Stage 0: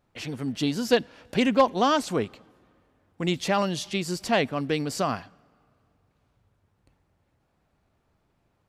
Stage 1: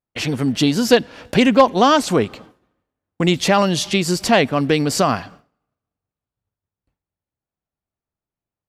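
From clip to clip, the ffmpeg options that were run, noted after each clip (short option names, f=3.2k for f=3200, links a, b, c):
-filter_complex "[0:a]agate=range=-33dB:threshold=-48dB:ratio=3:detection=peak,asplit=2[a][b];[b]acompressor=threshold=-29dB:ratio=6,volume=2dB[c];[a][c]amix=inputs=2:normalize=0,volume=5.5dB"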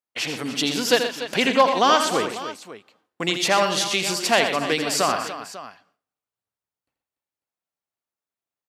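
-filter_complex "[0:a]highpass=f=800:p=1,asplit=2[a][b];[b]aecho=0:1:83|125|291|546:0.398|0.282|0.237|0.168[c];[a][c]amix=inputs=2:normalize=0,volume=-1dB"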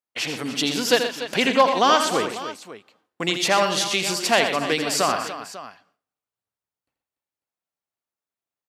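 -af anull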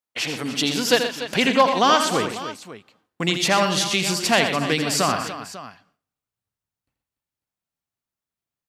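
-af "asubboost=boost=3:cutoff=240,volume=1dB"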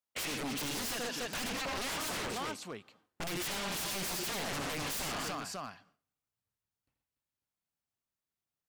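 -af "acompressor=threshold=-20dB:ratio=6,aeval=exprs='0.0422*(abs(mod(val(0)/0.0422+3,4)-2)-1)':c=same,volume=-4.5dB"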